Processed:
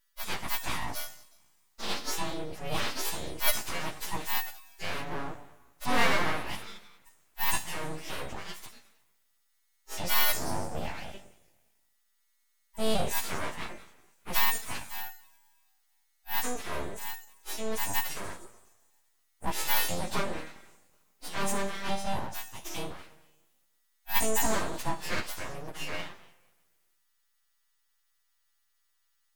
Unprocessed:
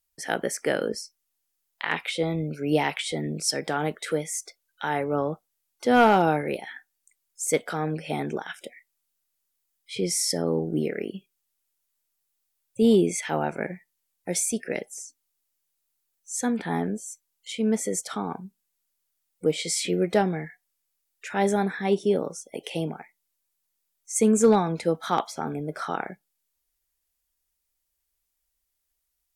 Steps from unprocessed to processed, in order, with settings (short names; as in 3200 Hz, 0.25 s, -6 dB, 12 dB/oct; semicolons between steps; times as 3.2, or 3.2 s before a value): frequency quantiser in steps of 2 st; two-slope reverb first 0.91 s, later 2.3 s, from -18 dB, DRR 7.5 dB; full-wave rectifier; gain -5.5 dB